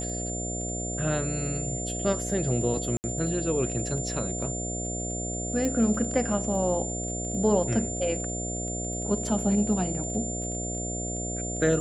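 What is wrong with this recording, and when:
mains buzz 60 Hz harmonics 12 −34 dBFS
surface crackle 14 per second −36 dBFS
whistle 7,200 Hz −33 dBFS
0:02.97–0:03.04: drop-out 69 ms
0:05.65: click −16 dBFS

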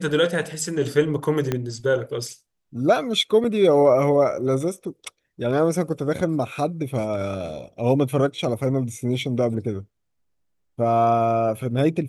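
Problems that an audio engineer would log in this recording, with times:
0:01.52: click −10 dBFS
0:03.44: drop-out 3.9 ms

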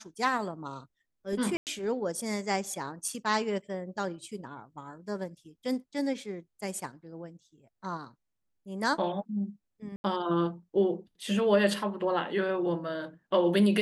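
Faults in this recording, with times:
0:01.57–0:01.67: drop-out 98 ms
0:09.96–0:10.04: drop-out 81 ms

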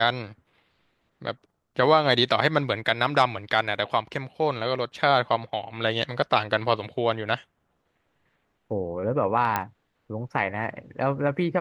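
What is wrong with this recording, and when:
0:09.56: click −10 dBFS

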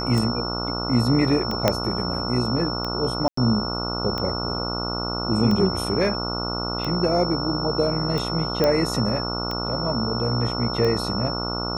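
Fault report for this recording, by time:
mains buzz 60 Hz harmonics 24 −29 dBFS
scratch tick 45 rpm
whistle 5,400 Hz −29 dBFS
0:01.68: click −3 dBFS
0:03.28–0:03.37: drop-out 94 ms
0:08.64: click −8 dBFS

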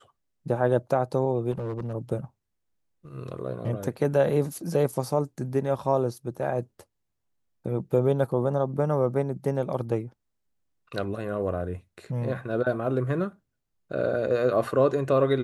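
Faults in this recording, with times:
0:01.51–0:01.94: clipping −27 dBFS

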